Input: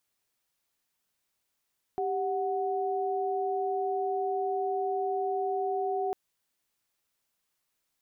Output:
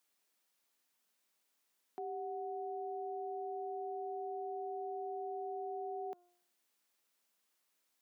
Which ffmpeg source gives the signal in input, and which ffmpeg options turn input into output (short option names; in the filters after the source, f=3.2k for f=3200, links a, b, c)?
-f lavfi -i "aevalsrc='0.0316*(sin(2*PI*392*t)+sin(2*PI*739.99*t))':d=4.15:s=44100"
-af "highpass=f=190:w=0.5412,highpass=f=190:w=1.3066,bandreject=f=354.3:t=h:w=4,bandreject=f=708.6:t=h:w=4,bandreject=f=1.0629k:t=h:w=4,bandreject=f=1.4172k:t=h:w=4,alimiter=level_in=11.5dB:limit=-24dB:level=0:latency=1:release=205,volume=-11.5dB"